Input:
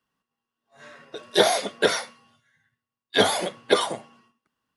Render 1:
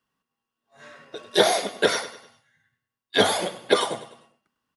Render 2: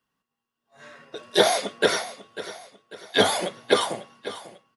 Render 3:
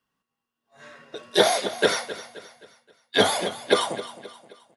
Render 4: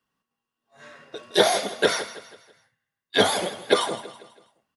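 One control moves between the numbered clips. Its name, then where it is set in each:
feedback echo, time: 0.1, 0.545, 0.263, 0.163 s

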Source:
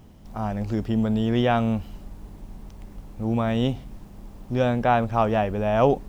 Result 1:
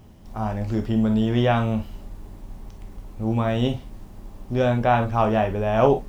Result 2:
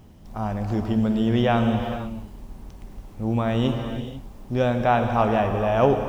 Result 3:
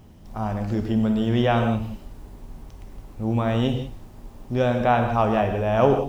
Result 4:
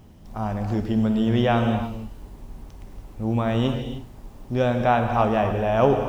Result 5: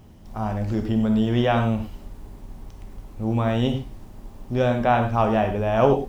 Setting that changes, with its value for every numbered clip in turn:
non-linear reverb, gate: 80, 510, 210, 330, 130 ms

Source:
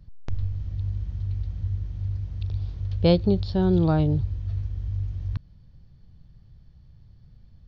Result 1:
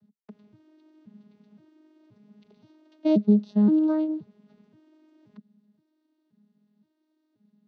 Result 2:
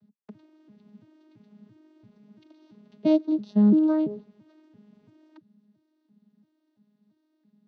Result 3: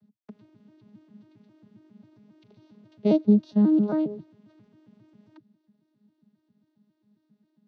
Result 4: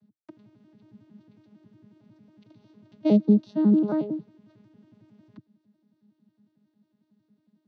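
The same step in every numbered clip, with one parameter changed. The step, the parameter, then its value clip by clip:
arpeggiated vocoder, a note every: 525, 338, 135, 91 ms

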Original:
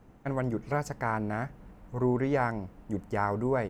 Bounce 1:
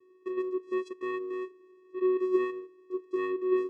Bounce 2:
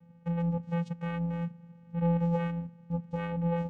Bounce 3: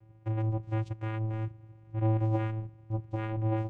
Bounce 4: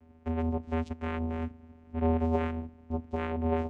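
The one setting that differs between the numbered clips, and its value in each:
vocoder, frequency: 370, 170, 110, 81 Hz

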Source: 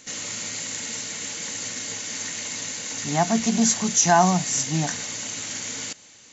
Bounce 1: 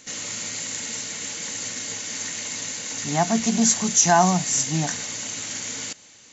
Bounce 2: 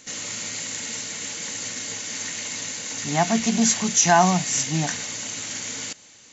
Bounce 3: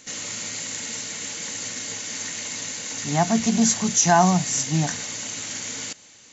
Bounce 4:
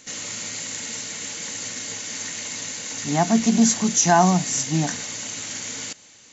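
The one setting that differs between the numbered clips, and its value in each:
dynamic EQ, frequency: 9900, 2500, 110, 270 Hz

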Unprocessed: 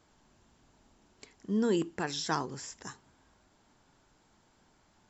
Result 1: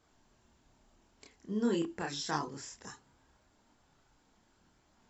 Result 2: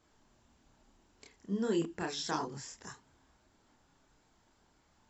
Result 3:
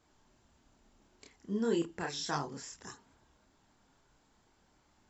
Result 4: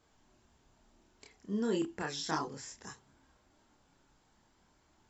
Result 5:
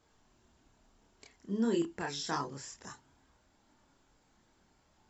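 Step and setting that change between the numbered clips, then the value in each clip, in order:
chorus, rate: 0.72, 1.7, 1.2, 0.38, 0.23 Hz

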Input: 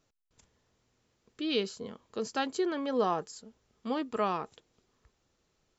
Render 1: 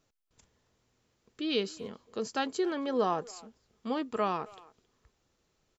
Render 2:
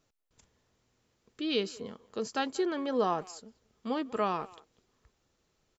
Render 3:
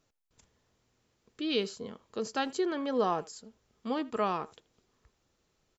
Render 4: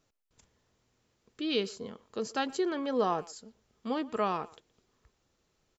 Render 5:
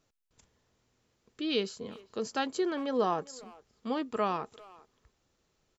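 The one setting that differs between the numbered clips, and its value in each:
speakerphone echo, time: 270, 190, 80, 120, 400 ms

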